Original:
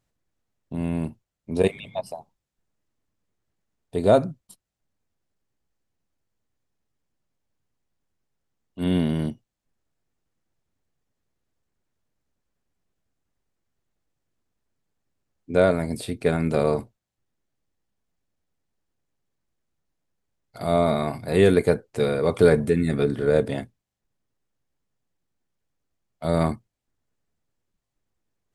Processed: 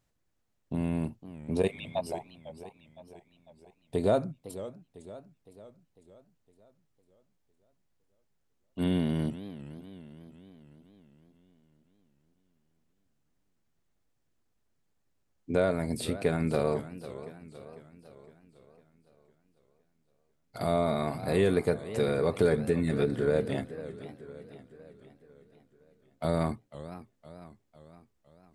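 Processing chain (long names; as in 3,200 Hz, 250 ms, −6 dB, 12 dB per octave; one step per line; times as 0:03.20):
downward compressor 2 to 1, threshold −28 dBFS, peak gain reduction 9.5 dB
feedback echo with a swinging delay time 506 ms, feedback 52%, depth 199 cents, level −14.5 dB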